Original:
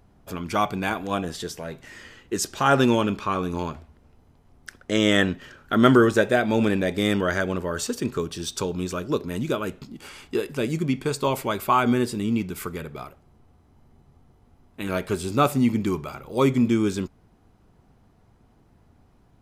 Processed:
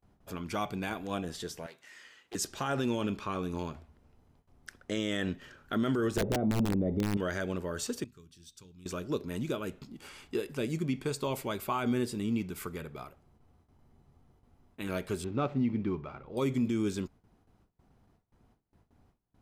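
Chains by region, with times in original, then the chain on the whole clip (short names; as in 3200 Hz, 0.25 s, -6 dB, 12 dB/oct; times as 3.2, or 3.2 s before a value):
1.66–2.35 HPF 1300 Hz 6 dB/oct + Doppler distortion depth 0.52 ms
6.17–7.17 polynomial smoothing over 65 samples + wrapped overs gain 13.5 dB + low shelf 440 Hz +12 dB
8.04–8.86 passive tone stack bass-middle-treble 6-0-2 + notches 50/100/150/200/250 Hz
15.24–16.37 median filter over 9 samples + air absorption 220 m
whole clip: gate with hold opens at -48 dBFS; dynamic EQ 1100 Hz, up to -4 dB, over -34 dBFS, Q 0.96; limiter -14.5 dBFS; gain -7 dB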